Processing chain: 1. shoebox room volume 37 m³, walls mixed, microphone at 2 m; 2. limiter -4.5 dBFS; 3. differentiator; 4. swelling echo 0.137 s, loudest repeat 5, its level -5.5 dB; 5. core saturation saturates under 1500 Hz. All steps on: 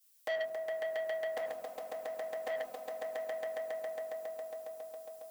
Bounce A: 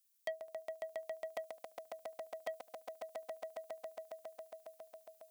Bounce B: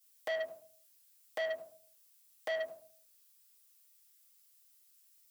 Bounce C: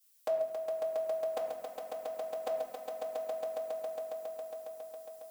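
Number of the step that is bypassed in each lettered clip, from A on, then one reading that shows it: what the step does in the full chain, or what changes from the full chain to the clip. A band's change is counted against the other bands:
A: 1, crest factor change +6.5 dB; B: 4, momentary loudness spread change +10 LU; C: 5, crest factor change -1.5 dB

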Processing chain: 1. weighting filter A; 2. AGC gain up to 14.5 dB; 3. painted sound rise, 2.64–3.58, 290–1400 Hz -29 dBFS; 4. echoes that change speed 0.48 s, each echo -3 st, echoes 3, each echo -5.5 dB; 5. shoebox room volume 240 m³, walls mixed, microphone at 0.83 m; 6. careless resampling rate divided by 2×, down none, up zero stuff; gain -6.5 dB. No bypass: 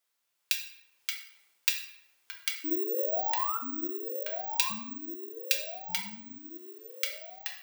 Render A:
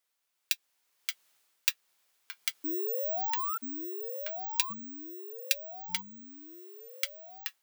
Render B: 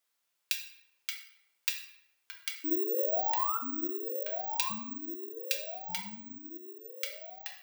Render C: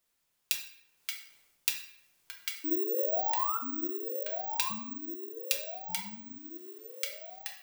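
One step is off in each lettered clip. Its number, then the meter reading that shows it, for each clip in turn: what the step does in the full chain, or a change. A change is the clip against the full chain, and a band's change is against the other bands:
5, crest factor change +2.5 dB; 2, 8 kHz band -4.5 dB; 1, 2 kHz band -4.5 dB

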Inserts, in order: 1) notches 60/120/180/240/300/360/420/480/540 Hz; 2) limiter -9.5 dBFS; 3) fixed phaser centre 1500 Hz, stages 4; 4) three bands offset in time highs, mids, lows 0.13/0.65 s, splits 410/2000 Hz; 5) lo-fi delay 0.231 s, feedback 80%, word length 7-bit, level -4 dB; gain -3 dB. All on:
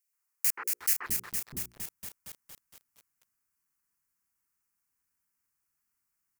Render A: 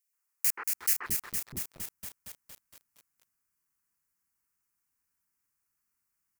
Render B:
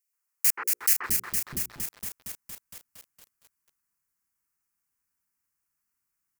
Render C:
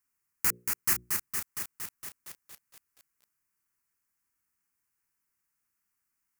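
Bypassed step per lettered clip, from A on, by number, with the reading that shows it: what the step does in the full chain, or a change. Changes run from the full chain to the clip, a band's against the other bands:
1, momentary loudness spread change -3 LU; 2, mean gain reduction 2.5 dB; 4, 8 kHz band -2.0 dB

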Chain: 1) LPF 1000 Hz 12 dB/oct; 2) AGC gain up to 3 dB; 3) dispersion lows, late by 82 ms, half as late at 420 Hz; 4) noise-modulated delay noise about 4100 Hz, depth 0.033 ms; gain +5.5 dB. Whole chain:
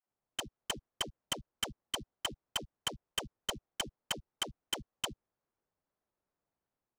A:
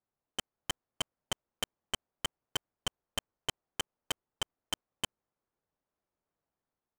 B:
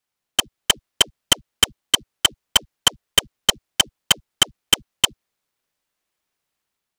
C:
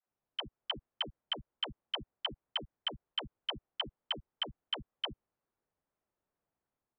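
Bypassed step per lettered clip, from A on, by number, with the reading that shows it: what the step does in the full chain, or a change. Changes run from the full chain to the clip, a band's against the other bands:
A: 3, crest factor change +6.0 dB; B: 1, 8 kHz band +5.5 dB; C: 4, 4 kHz band +3.0 dB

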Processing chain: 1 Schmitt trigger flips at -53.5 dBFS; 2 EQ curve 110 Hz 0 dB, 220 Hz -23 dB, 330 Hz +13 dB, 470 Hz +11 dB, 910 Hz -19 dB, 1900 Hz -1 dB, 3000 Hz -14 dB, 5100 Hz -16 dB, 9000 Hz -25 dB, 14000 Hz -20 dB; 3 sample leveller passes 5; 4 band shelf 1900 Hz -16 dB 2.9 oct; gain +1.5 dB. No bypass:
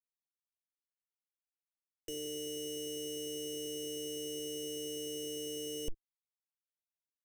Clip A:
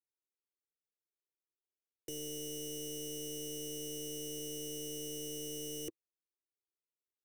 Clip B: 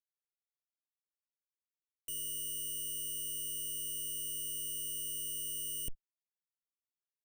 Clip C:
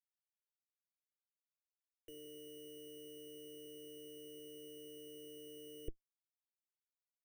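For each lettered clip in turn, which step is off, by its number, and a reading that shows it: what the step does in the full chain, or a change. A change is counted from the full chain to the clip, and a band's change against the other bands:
1, distortion -5 dB; 2, crest factor change -4.0 dB; 3, crest factor change +11.0 dB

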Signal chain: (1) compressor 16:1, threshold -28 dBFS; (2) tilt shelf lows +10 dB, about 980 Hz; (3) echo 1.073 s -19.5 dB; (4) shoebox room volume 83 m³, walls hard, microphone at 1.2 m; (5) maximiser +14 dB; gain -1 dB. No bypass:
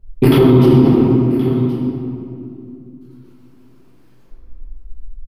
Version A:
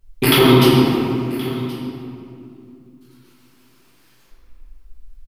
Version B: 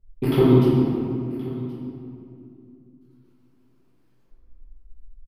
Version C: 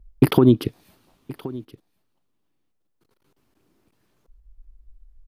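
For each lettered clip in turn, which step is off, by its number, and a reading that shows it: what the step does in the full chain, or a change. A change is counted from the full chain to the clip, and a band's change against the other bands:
2, 1 kHz band +8.5 dB; 5, crest factor change +7.0 dB; 4, crest factor change +10.0 dB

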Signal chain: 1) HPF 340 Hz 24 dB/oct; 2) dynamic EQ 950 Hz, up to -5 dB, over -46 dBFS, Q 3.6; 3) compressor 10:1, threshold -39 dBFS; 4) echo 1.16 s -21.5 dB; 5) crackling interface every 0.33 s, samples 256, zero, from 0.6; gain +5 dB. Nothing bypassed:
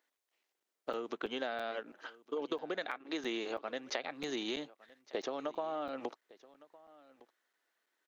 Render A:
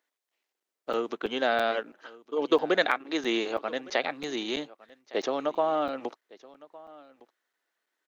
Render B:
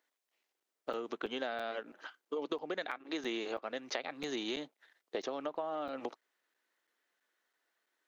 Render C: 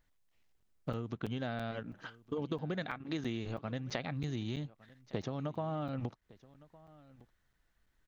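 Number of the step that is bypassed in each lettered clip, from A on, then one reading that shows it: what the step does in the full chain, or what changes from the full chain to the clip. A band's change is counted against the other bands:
3, mean gain reduction 8.5 dB; 4, momentary loudness spread change -1 LU; 1, 125 Hz band +27.0 dB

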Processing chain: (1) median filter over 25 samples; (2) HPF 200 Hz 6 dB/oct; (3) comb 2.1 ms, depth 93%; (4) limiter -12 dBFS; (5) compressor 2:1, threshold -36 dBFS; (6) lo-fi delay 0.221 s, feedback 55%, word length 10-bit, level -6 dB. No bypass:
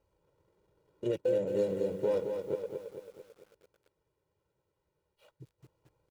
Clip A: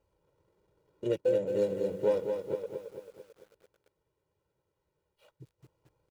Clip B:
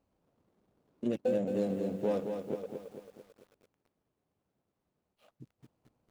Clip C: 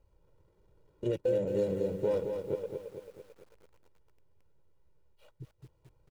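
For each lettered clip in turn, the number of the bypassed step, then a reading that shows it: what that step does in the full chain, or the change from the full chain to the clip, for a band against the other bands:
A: 4, crest factor change +2.5 dB; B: 3, 500 Hz band -5.5 dB; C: 2, 125 Hz band +5.0 dB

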